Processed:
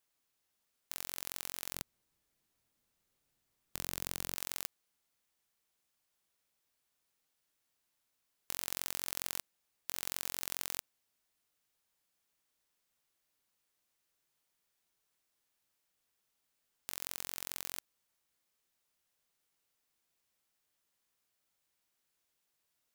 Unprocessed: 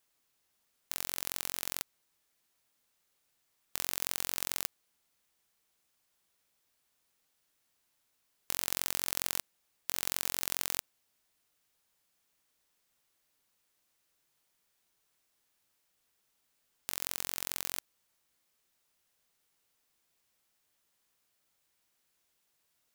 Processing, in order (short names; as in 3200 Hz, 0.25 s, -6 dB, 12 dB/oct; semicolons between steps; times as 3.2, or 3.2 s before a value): 1.73–4.35 low shelf 350 Hz +12 dB; gain -5 dB